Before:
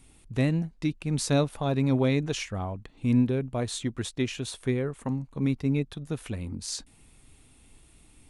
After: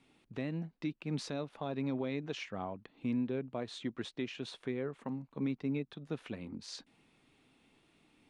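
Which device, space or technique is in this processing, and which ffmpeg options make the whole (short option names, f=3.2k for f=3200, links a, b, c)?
DJ mixer with the lows and highs turned down: -filter_complex "[0:a]acrossover=split=150 4800:gain=0.0708 1 0.0794[a][b][c];[a][b][c]amix=inputs=3:normalize=0,alimiter=limit=-22dB:level=0:latency=1:release=269,volume=-4.5dB"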